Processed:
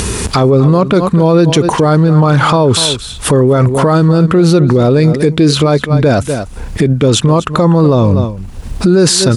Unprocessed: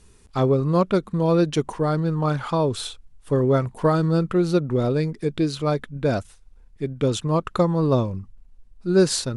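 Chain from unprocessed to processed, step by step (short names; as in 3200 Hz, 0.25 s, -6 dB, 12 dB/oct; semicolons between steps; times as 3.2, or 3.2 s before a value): HPF 59 Hz 12 dB/oct; upward compressor, threshold -25 dBFS; on a send: echo 0.245 s -18 dB; on the sum: maximiser +24 dB; gain -1 dB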